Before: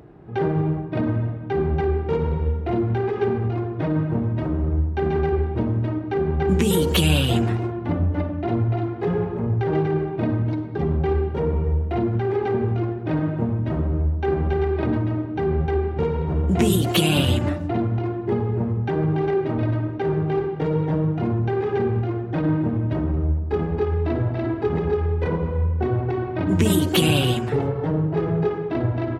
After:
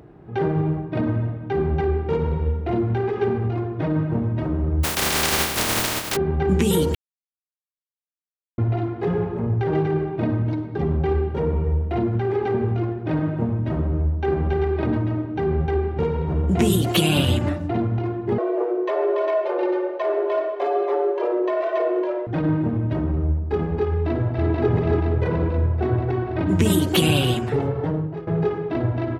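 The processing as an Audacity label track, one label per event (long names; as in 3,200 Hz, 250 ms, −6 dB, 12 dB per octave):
4.830000	6.150000	compressing power law on the bin magnitudes exponent 0.17
6.950000	8.580000	silence
18.380000	22.270000	frequency shifter +250 Hz
23.900000	24.520000	delay throw 480 ms, feedback 70%, level −1 dB
27.850000	28.270000	fade out, to −16 dB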